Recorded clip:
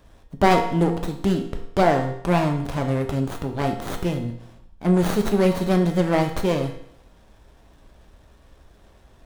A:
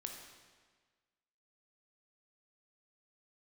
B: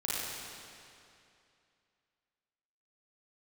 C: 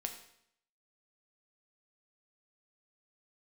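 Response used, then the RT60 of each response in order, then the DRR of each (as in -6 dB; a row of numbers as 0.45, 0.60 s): C; 1.5, 2.6, 0.70 s; 2.5, -8.5, 4.0 dB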